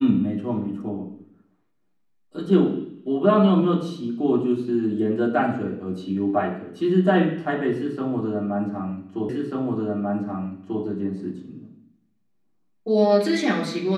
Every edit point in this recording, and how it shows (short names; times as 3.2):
9.29 repeat of the last 1.54 s